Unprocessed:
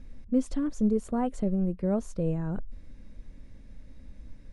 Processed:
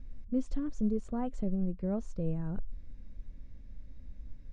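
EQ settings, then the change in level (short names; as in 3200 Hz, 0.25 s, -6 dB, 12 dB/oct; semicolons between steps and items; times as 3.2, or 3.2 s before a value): LPF 7400 Hz 24 dB/oct; low shelf 130 Hz +9.5 dB; -8.0 dB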